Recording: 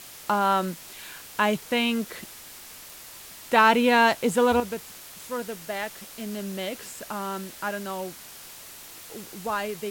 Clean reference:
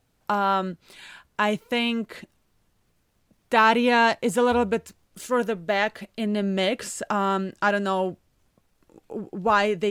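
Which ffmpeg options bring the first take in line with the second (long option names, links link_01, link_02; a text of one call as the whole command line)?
ffmpeg -i in.wav -af "adeclick=threshold=4,afwtdn=0.0071,asetnsamples=nb_out_samples=441:pad=0,asendcmd='4.6 volume volume 8.5dB',volume=0dB" out.wav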